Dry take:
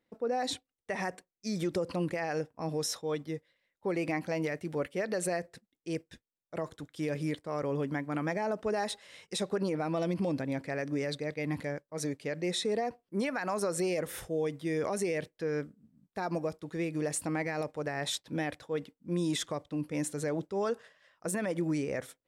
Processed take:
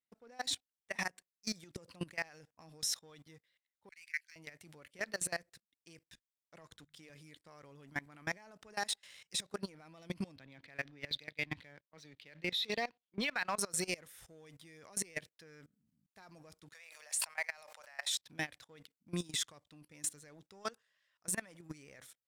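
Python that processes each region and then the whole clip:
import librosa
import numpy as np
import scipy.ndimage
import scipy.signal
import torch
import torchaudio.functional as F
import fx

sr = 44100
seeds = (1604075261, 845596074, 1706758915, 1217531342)

y = fx.chain(x, sr, fx.cheby_ripple_highpass(hz=1500.0, ripple_db=3),
    fx.band_widen(depth_pct=100), at=(3.89, 4.36))
y = fx.chain(y, sr, fx.high_shelf(hz=10000.0, db=-11.5),
    fx.hum_notches(base_hz=50, count=4), at=(6.66, 7.1))
y = fx.chain(y, sr, fx.lowpass_res(hz=3600.0, q=3.0),
    fx.band_widen(depth_pct=70), at=(10.36, 13.58))
y = fx.chain(y, sr, fx.steep_highpass(hz=560.0, slope=48),
    fx.sustainer(db_per_s=79.0), at=(16.73, 18.14))
y = fx.tone_stack(y, sr, knobs='5-5-5')
y = fx.leveller(y, sr, passes=1)
y = fx.level_steps(y, sr, step_db=22)
y = F.gain(torch.from_numpy(y), 9.5).numpy()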